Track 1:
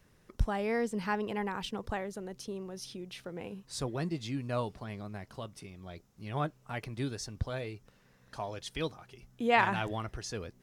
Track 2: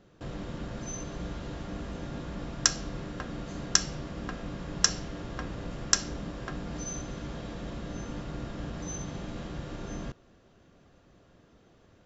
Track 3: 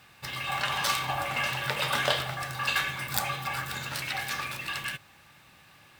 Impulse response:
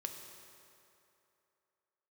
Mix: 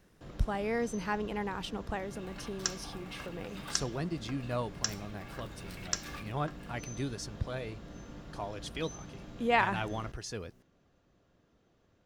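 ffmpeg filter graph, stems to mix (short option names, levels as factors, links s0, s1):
-filter_complex "[0:a]volume=0.891,asplit=2[s0][s1];[1:a]volume=0.335[s2];[2:a]adelay=1750,volume=0.299[s3];[s1]apad=whole_len=341709[s4];[s3][s4]sidechaincompress=threshold=0.00282:ratio=12:attack=25:release=327[s5];[s0][s2][s5]amix=inputs=3:normalize=0"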